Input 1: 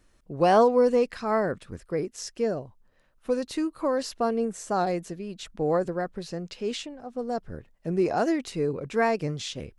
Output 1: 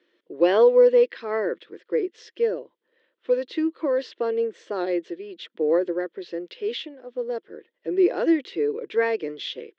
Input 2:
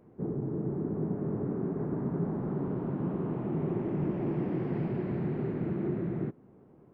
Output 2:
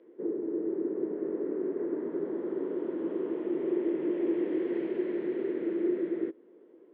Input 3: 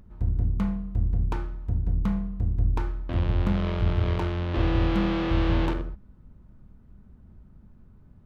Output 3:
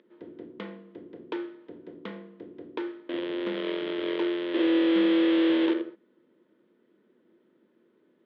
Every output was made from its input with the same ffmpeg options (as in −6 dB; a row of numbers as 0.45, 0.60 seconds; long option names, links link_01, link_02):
-af "highpass=frequency=300:width=0.5412,highpass=frequency=300:width=1.3066,equalizer=frequency=340:width_type=q:width=4:gain=10,equalizer=frequency=490:width_type=q:width=4:gain=7,equalizer=frequency=770:width_type=q:width=4:gain=-10,equalizer=frequency=1200:width_type=q:width=4:gain=-5,equalizer=frequency=1900:width_type=q:width=4:gain=6,equalizer=frequency=3300:width_type=q:width=4:gain=9,lowpass=frequency=4200:width=0.5412,lowpass=frequency=4200:width=1.3066,volume=-1.5dB"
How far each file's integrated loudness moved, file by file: +3.0, +1.0, +0.5 LU